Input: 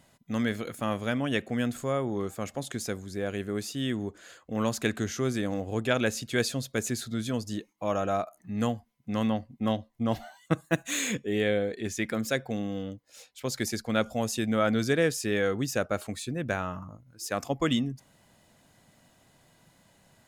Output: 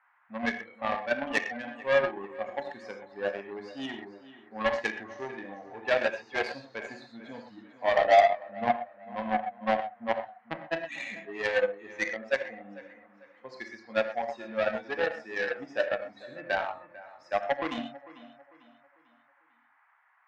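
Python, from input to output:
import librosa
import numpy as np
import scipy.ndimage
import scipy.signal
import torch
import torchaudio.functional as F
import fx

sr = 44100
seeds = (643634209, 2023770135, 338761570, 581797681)

p1 = fx.bin_expand(x, sr, power=2.0)
p2 = fx.peak_eq(p1, sr, hz=560.0, db=6.5, octaves=0.92)
p3 = fx.rider(p2, sr, range_db=10, speed_s=2.0)
p4 = 10.0 ** (-25.0 / 20.0) * np.tanh(p3 / 10.0 ** (-25.0 / 20.0))
p5 = fx.cabinet(p4, sr, low_hz=420.0, low_slope=12, high_hz=3400.0, hz=(440.0, 760.0, 1300.0, 1800.0, 3300.0), db=(-8, 7, -5, 8, -7))
p6 = fx.dmg_noise_band(p5, sr, seeds[0], low_hz=790.0, high_hz=2000.0, level_db=-68.0)
p7 = p6 + fx.echo_feedback(p6, sr, ms=447, feedback_pct=38, wet_db=-13.5, dry=0)
p8 = fx.rev_gated(p7, sr, seeds[1], gate_ms=150, shape='flat', drr_db=1.0)
p9 = fx.cheby_harmonics(p8, sr, harmonics=(7,), levels_db=(-21,), full_scale_db=-15.0)
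y = F.gain(torch.from_numpy(p9), 7.0).numpy()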